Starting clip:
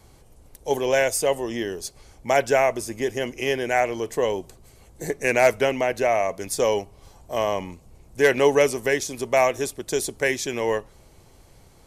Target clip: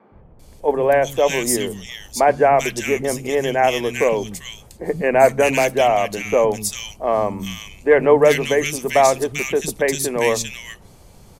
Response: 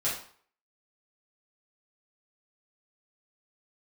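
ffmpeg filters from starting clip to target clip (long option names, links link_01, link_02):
-filter_complex "[0:a]equalizer=frequency=190:width=2.5:gain=8,acrossover=split=210|1900[link_01][link_02][link_03];[link_01]adelay=120[link_04];[link_03]adelay=410[link_05];[link_04][link_02][link_05]amix=inputs=3:normalize=0,asetrate=45938,aresample=44100,volume=5.5dB"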